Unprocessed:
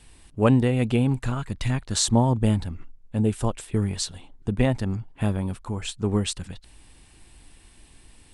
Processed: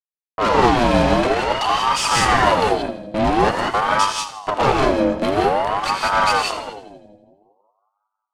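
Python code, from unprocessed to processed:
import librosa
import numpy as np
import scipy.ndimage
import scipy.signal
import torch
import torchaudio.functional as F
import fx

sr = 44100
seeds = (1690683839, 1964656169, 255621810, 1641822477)

p1 = fx.low_shelf(x, sr, hz=120.0, db=-2.0)
p2 = fx.level_steps(p1, sr, step_db=23)
p3 = p1 + (p2 * librosa.db_to_amplitude(0.0))
p4 = fx.fuzz(p3, sr, gain_db=27.0, gate_db=-30.0)
p5 = fx.small_body(p4, sr, hz=(2100.0, 3600.0), ring_ms=45, db=15)
p6 = np.clip(10.0 ** (16.0 / 20.0) * p5, -1.0, 1.0) / 10.0 ** (16.0 / 20.0)
p7 = fx.air_absorb(p6, sr, metres=66.0)
p8 = p7 + fx.echo_split(p7, sr, split_hz=350.0, low_ms=183, high_ms=82, feedback_pct=52, wet_db=-13, dry=0)
p9 = fx.rev_gated(p8, sr, seeds[0], gate_ms=210, shape='rising', drr_db=-1.5)
p10 = fx.ring_lfo(p9, sr, carrier_hz=750.0, swing_pct=45, hz=0.49)
y = p10 * librosa.db_to_amplitude(2.5)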